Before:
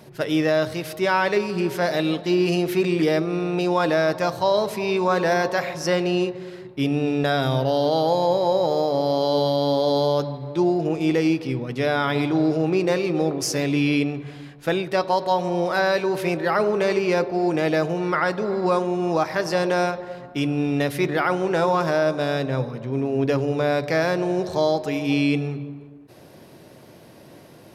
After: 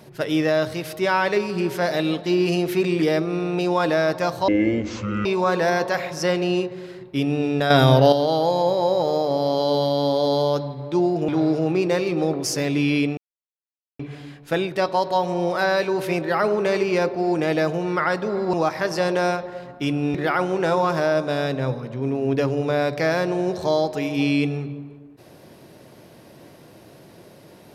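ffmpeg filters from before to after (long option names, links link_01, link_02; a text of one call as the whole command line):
ffmpeg -i in.wav -filter_complex "[0:a]asplit=9[link_01][link_02][link_03][link_04][link_05][link_06][link_07][link_08][link_09];[link_01]atrim=end=4.484[link_10];[link_02]atrim=start=4.48:end=4.89,asetpts=PTS-STARTPTS,asetrate=23373,aresample=44100,atrim=end_sample=34115,asetpts=PTS-STARTPTS[link_11];[link_03]atrim=start=4.886:end=7.342[link_12];[link_04]atrim=start=7.338:end=7.762,asetpts=PTS-STARTPTS,volume=7.5dB[link_13];[link_05]atrim=start=7.758:end=10.922[link_14];[link_06]atrim=start=12.258:end=14.15,asetpts=PTS-STARTPTS,afade=type=out:start_time=1.888:duration=0.004:curve=hsin,apad=pad_dur=0.82[link_15];[link_07]atrim=start=14.15:end=18.692,asetpts=PTS-STARTPTS,afade=type=in:duration=0.004:curve=hsin[link_16];[link_08]atrim=start=19.078:end=20.692[link_17];[link_09]atrim=start=21.048[link_18];[link_10][link_11]acrossfade=duration=0.004:curve1=hsin:curve2=hsin[link_19];[link_19][link_12]acrossfade=duration=0.004:curve1=hsin:curve2=hsin[link_20];[link_20][link_13]acrossfade=duration=0.004:curve1=hsin:curve2=hsin[link_21];[link_21][link_14]acrossfade=duration=0.004:curve1=hsin:curve2=hsin[link_22];[link_15][link_16]concat=n=2:v=0:a=1[link_23];[link_22][link_23]acrossfade=duration=0.004:curve1=hsin:curve2=hsin[link_24];[link_24][link_17]acrossfade=duration=0.004:curve1=hsin:curve2=hsin[link_25];[link_25][link_18]acrossfade=duration=0.004:curve1=hsin:curve2=hsin" out.wav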